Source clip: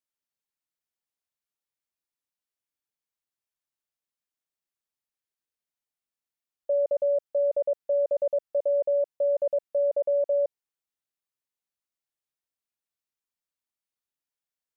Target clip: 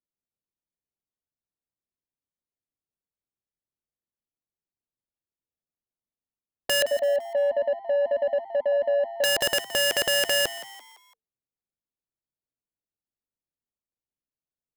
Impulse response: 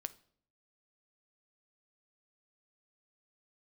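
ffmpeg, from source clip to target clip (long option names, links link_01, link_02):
-filter_complex "[0:a]asplit=3[link_01][link_02][link_03];[link_01]afade=type=out:start_time=6.81:duration=0.02[link_04];[link_02]equalizer=frequency=250:width_type=o:width=0.33:gain=11,equalizer=frequency=500:width_type=o:width=0.33:gain=-12,equalizer=frequency=800:width_type=o:width=0.33:gain=10,afade=type=in:start_time=6.81:duration=0.02,afade=type=out:start_time=9.23:duration=0.02[link_05];[link_03]afade=type=in:start_time=9.23:duration=0.02[link_06];[link_04][link_05][link_06]amix=inputs=3:normalize=0,adynamicsmooth=sensitivity=2:basefreq=540,aeval=exprs='(mod(15.8*val(0)+1,2)-1)/15.8':channel_layout=same,asplit=5[link_07][link_08][link_09][link_10][link_11];[link_08]adelay=169,afreqshift=110,volume=-15dB[link_12];[link_09]adelay=338,afreqshift=220,volume=-22.3dB[link_13];[link_10]adelay=507,afreqshift=330,volume=-29.7dB[link_14];[link_11]adelay=676,afreqshift=440,volume=-37dB[link_15];[link_07][link_12][link_13][link_14][link_15]amix=inputs=5:normalize=0,volume=5.5dB"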